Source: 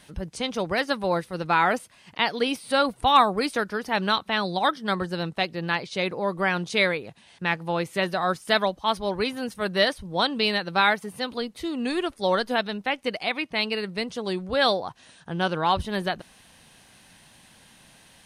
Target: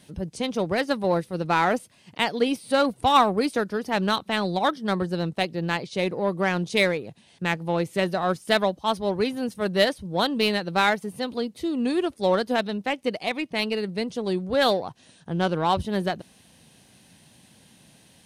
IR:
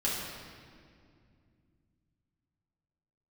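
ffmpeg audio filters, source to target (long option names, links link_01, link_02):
-filter_complex "[0:a]highpass=86,equalizer=frequency=1300:width_type=o:width=1.8:gain=-5.5,asplit=2[link_01][link_02];[link_02]adynamicsmooth=sensitivity=2:basefreq=800,volume=-2dB[link_03];[link_01][link_03]amix=inputs=2:normalize=0,volume=-1dB"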